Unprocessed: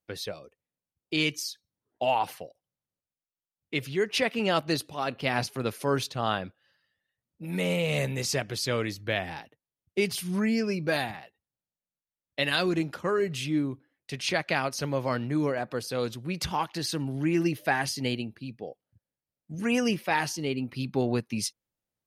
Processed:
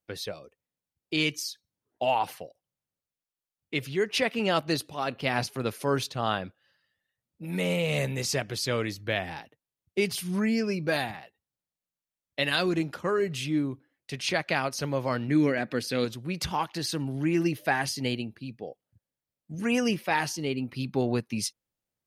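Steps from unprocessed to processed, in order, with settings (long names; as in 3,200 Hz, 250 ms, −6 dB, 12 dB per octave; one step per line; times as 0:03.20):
0:15.28–0:16.05: graphic EQ with 10 bands 250 Hz +7 dB, 1,000 Hz −6 dB, 2,000 Hz +9 dB, 4,000 Hz +3 dB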